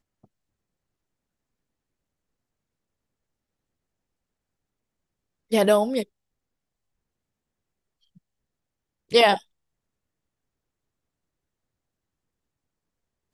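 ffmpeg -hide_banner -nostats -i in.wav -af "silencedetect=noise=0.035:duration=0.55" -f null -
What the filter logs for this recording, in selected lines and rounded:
silence_start: 0.00
silence_end: 5.52 | silence_duration: 5.52
silence_start: 6.03
silence_end: 9.12 | silence_duration: 3.10
silence_start: 9.37
silence_end: 13.34 | silence_duration: 3.97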